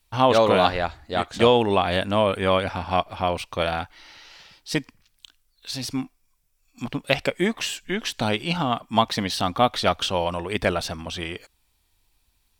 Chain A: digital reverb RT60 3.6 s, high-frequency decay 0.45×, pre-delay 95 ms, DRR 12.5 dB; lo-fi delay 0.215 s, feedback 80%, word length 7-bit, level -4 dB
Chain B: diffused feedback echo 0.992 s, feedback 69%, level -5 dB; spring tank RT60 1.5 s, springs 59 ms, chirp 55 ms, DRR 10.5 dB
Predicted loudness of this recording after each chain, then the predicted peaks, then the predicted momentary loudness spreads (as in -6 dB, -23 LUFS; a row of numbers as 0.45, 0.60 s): -21.0, -22.5 LUFS; -1.5, -1.5 dBFS; 17, 10 LU